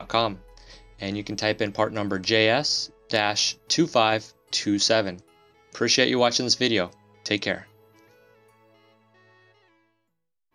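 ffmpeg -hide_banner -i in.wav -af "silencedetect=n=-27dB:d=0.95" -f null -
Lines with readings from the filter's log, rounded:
silence_start: 7.57
silence_end: 10.54 | silence_duration: 2.97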